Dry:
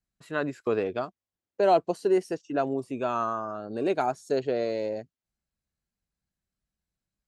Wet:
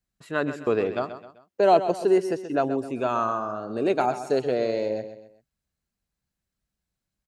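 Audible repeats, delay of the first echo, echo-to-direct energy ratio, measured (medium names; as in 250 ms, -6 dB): 3, 130 ms, -10.5 dB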